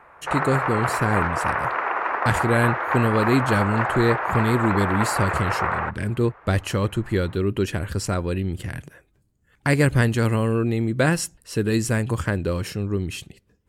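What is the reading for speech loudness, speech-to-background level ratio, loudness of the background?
-23.5 LUFS, 1.0 dB, -24.5 LUFS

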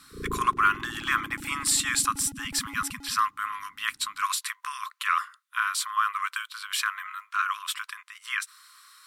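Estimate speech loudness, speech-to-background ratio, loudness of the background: -28.0 LUFS, 14.0 dB, -42.0 LUFS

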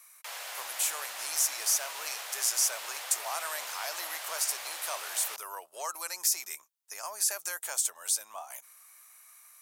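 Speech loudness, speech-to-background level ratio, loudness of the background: -31.0 LUFS, 7.5 dB, -38.5 LUFS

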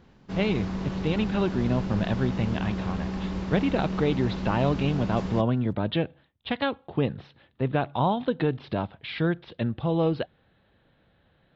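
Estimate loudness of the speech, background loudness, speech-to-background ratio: -28.0 LUFS, -32.0 LUFS, 4.0 dB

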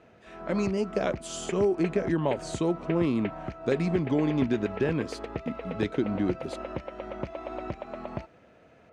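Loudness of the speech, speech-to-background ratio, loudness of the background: -29.0 LUFS, 9.0 dB, -38.0 LUFS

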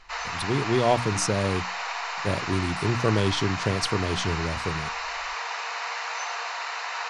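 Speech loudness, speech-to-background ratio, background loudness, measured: -27.0 LUFS, 3.5 dB, -30.5 LUFS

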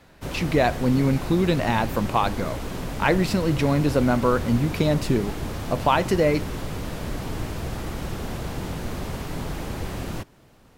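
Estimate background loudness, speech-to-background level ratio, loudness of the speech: -32.0 LUFS, 9.0 dB, -23.0 LUFS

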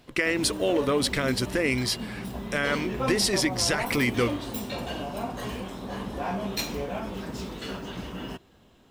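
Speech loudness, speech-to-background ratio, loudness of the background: -26.0 LUFS, 7.5 dB, -33.5 LUFS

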